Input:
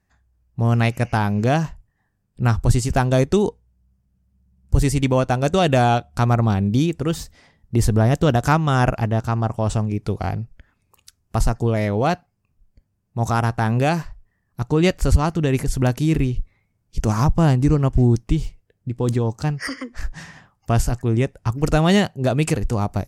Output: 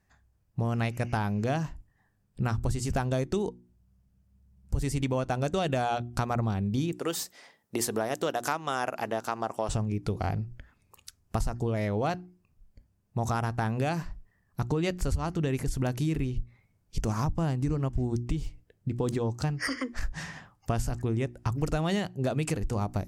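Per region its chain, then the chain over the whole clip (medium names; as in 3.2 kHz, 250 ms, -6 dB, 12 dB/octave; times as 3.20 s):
6.92–9.69 s: high-pass 380 Hz + treble shelf 10 kHz +8.5 dB
whole clip: hum notches 60/120/180/240/300/360 Hz; compression 5:1, threshold -26 dBFS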